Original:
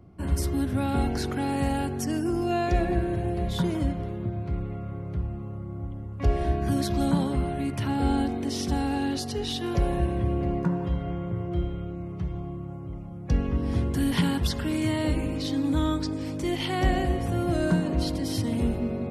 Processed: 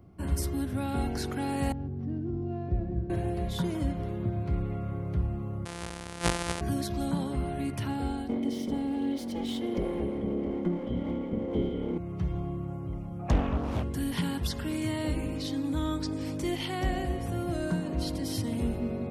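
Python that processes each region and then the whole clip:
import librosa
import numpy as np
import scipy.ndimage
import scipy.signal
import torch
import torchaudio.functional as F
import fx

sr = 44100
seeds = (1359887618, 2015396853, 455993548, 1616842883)

y = fx.chain(x, sr, fx.cvsd(bps=32000),
    fx.bandpass_q(hz=110.0, q=1.0),
    fx.air_absorb(metres=62.0), at=(1.72, 3.1))
y = fx.chain(y, sr, fx.sample_sort(block=256),
    fx.low_shelf(hz=390.0, db=-9.5),
    fx.resample_bad(factor=2, down='none', up='filtered'), at=(5.65, 6.61))
y = fx.chain(y, sr, fx.lower_of_two(delay_ms=3.6),
    fx.small_body(hz=(220.0, 400.0, 2100.0, 3100.0), ring_ms=20, db=16), at=(8.29, 11.98))
y = fx.chain(y, sr, fx.small_body(hz=(740.0, 1200.0, 2400.0), ring_ms=30, db=16),
    fx.doppler_dist(depth_ms=0.97), at=(13.19, 13.83))
y = fx.rider(y, sr, range_db=10, speed_s=0.5)
y = fx.high_shelf(y, sr, hz=9600.0, db=6.0)
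y = F.gain(torch.from_numpy(y), -9.0).numpy()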